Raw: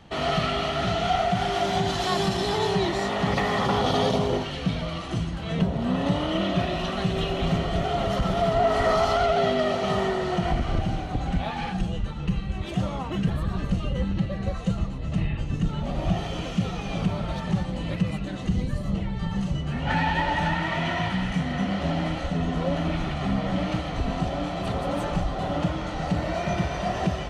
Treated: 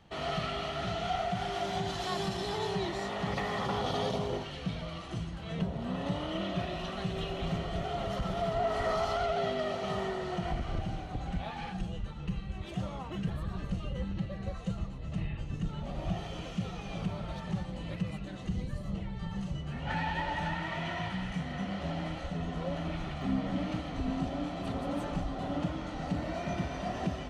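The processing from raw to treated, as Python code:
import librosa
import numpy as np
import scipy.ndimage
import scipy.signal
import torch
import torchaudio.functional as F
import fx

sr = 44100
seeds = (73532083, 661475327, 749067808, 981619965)

y = fx.peak_eq(x, sr, hz=260.0, db=fx.steps((0.0, -3.5), (23.22, 10.5)), octaves=0.32)
y = y * librosa.db_to_amplitude(-9.0)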